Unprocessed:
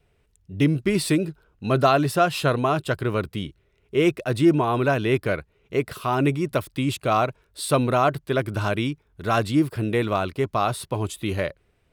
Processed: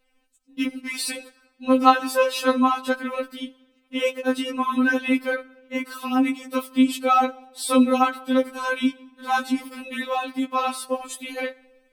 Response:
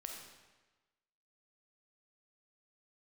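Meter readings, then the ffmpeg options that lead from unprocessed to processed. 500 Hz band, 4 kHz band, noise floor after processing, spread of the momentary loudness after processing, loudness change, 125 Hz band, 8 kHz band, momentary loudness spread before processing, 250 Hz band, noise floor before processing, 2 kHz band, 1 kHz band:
-2.5 dB, +1.0 dB, -66 dBFS, 14 LU, 0.0 dB, under -30 dB, +1.5 dB, 9 LU, +1.5 dB, -66 dBFS, +2.0 dB, +2.0 dB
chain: -filter_complex "[0:a]asplit=2[a][b];[1:a]atrim=start_sample=2205[c];[b][c]afir=irnorm=-1:irlink=0,volume=-14dB[d];[a][d]amix=inputs=2:normalize=0,afftfilt=real='re*3.46*eq(mod(b,12),0)':imag='im*3.46*eq(mod(b,12),0)':win_size=2048:overlap=0.75,volume=2.5dB"

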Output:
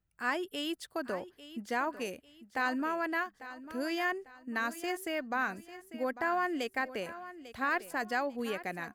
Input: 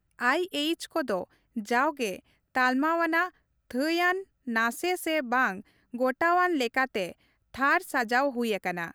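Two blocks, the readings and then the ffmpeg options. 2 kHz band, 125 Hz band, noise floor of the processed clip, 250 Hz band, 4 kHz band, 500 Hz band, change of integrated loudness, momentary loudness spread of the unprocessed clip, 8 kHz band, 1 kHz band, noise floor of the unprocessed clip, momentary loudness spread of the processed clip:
-7.5 dB, n/a, -68 dBFS, -7.5 dB, -7.5 dB, -7.5 dB, -7.5 dB, 9 LU, -7.5 dB, -7.5 dB, -74 dBFS, 10 LU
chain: -af "aecho=1:1:847|1694|2541:0.188|0.0659|0.0231,volume=-7.5dB"

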